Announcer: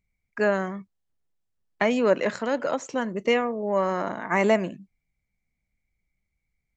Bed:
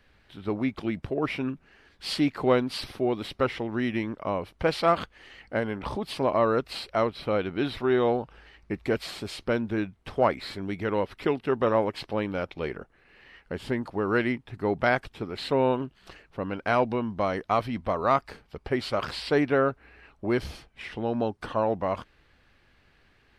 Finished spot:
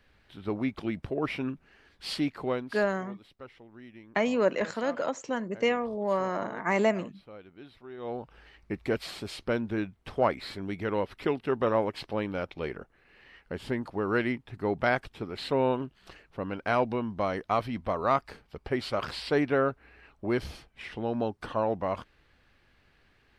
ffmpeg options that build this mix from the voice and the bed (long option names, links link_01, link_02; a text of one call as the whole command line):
ffmpeg -i stem1.wav -i stem2.wav -filter_complex "[0:a]adelay=2350,volume=-4dB[link_01];[1:a]volume=16dB,afade=type=out:start_time=1.99:duration=0.94:silence=0.11885,afade=type=in:start_time=7.97:duration=0.45:silence=0.11885[link_02];[link_01][link_02]amix=inputs=2:normalize=0" out.wav